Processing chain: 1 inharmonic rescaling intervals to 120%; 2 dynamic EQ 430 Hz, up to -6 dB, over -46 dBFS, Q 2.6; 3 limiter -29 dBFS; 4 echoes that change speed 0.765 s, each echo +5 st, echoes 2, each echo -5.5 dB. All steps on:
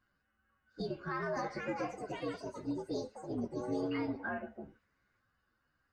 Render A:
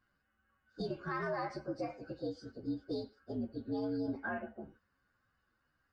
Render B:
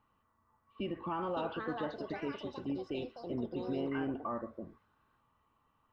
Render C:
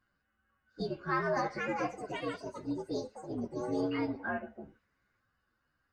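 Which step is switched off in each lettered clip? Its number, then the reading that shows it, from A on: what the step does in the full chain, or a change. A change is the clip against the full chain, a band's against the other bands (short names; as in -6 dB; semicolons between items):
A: 4, crest factor change -3.0 dB; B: 1, 2 kHz band -4.5 dB; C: 3, crest factor change +2.0 dB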